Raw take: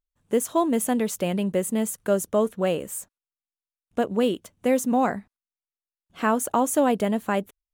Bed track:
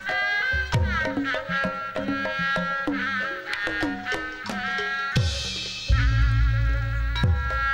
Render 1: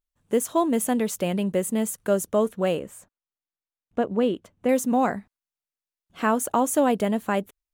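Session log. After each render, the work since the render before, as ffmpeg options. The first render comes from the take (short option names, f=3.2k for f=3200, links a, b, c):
-filter_complex "[0:a]asettb=1/sr,asplit=3[a][b][c];[a]atrim=end=2.794[d];[b]atrim=start=2.79:end=4.69,asetpts=PTS-STARTPTS,afade=t=in:d=0.004:c=qsin,afade=t=out:st=1.896:d=0.004:c=qsin,lowpass=f=2.1k:p=1[e];[c]atrim=start=4.686[f];[d][e]acrossfade=d=0.004:c1=hsin:c2=qsin[g];[g][f]acrossfade=d=0.004:c1=qsin:c2=hsin"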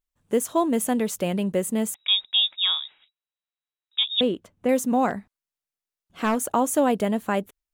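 -filter_complex "[0:a]asettb=1/sr,asplit=3[a][b][c];[a]atrim=end=1.944[d];[b]atrim=start=1.94:end=4.21,asetpts=PTS-STARTPTS,afade=t=in:d=0.004:c=qsin,afade=t=out:st=2.266:d=0.004:c=qsin,lowpass=f=3.3k:t=q:w=0.5098,lowpass=f=3.3k:t=q:w=0.6013,lowpass=f=3.3k:t=q:w=0.9,lowpass=f=3.3k:t=q:w=2.563,afreqshift=-3900[e];[c]atrim=start=4.206[f];[d][e]acrossfade=d=0.004:c1=hsin:c2=qsin[g];[g][f]acrossfade=d=0.004:c1=qsin:c2=hsin,asettb=1/sr,asplit=3[h][i][j];[h]atrim=end=5.094[k];[i]atrim=start=5.09:end=6.49,asetpts=PTS-STARTPTS,afade=t=in:d=0.004:c=qsin,afade=t=out:st=1.396:d=0.004:c=qsin,aeval=exprs='clip(val(0),-1,0.106)':c=same[l];[j]atrim=start=6.486[m];[k][l]acrossfade=d=0.004:c1=hsin:c2=qsin[n];[n][m]acrossfade=d=0.004:c1=qsin:c2=hsin"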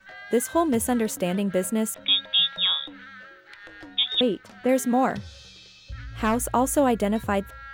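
-filter_complex "[1:a]volume=-17.5dB[a];[0:a][a]amix=inputs=2:normalize=0"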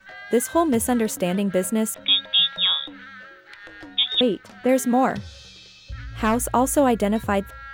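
-af "volume=2.5dB"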